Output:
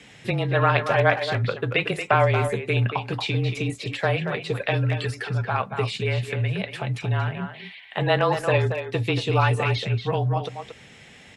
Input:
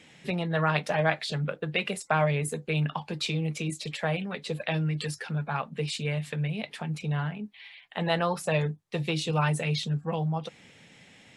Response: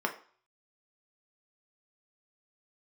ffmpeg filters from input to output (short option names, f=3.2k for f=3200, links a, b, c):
-filter_complex "[0:a]asplit=2[a][b];[b]adelay=230,highpass=300,lowpass=3.4k,asoftclip=type=hard:threshold=-19.5dB,volume=-7dB[c];[a][c]amix=inputs=2:normalize=0,acrossover=split=3900[d][e];[e]acompressor=threshold=-48dB:ratio=4:attack=1:release=60[f];[d][f]amix=inputs=2:normalize=0,asplit=2[g][h];[1:a]atrim=start_sample=2205[i];[h][i]afir=irnorm=-1:irlink=0,volume=-26dB[j];[g][j]amix=inputs=2:normalize=0,afreqshift=-30,volume=5.5dB"